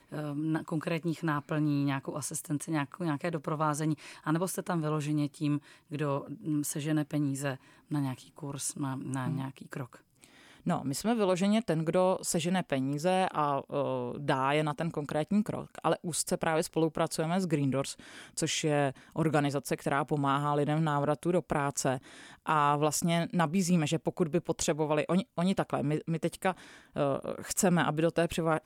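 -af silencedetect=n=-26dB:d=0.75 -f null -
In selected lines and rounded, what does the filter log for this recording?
silence_start: 9.82
silence_end: 10.67 | silence_duration: 0.85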